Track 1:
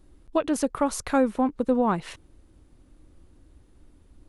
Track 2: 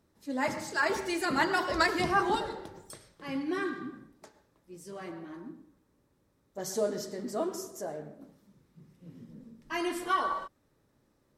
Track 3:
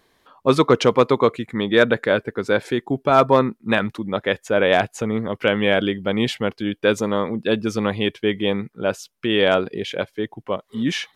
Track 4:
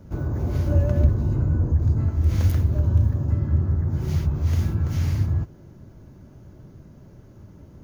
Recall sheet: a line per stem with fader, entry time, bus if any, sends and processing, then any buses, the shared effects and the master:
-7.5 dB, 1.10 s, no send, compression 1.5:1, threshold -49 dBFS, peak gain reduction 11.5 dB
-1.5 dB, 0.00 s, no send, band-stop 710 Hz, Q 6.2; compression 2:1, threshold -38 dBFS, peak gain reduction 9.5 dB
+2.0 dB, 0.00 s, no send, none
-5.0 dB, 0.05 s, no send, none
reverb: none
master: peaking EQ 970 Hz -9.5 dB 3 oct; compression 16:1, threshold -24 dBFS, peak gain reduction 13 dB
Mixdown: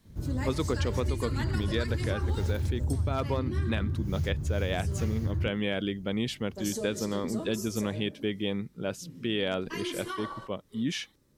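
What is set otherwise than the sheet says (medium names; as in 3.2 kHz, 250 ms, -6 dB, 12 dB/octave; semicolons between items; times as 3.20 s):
stem 2 -1.5 dB -> +6.5 dB; stem 3 +2.0 dB -> -4.0 dB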